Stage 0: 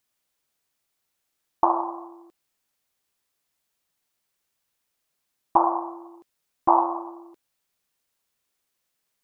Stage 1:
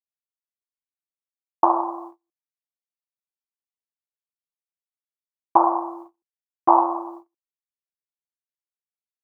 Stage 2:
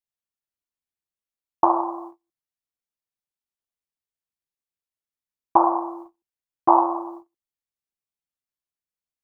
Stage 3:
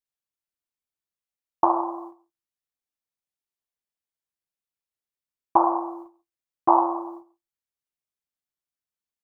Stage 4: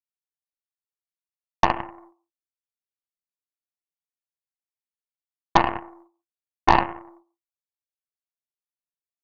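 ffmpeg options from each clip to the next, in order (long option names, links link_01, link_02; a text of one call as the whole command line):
ffmpeg -i in.wav -af "agate=range=-38dB:threshold=-41dB:ratio=16:detection=peak,volume=3dB" out.wav
ffmpeg -i in.wav -af "lowshelf=frequency=210:gain=8,volume=-1dB" out.wav
ffmpeg -i in.wav -af "aecho=1:1:138:0.075,volume=-2dB" out.wav
ffmpeg -i in.wav -af "aeval=exprs='0.668*(cos(1*acos(clip(val(0)/0.668,-1,1)))-cos(1*PI/2))+0.119*(cos(4*acos(clip(val(0)/0.668,-1,1)))-cos(4*PI/2))+0.075*(cos(7*acos(clip(val(0)/0.668,-1,1)))-cos(7*PI/2))':channel_layout=same,volume=1dB" out.wav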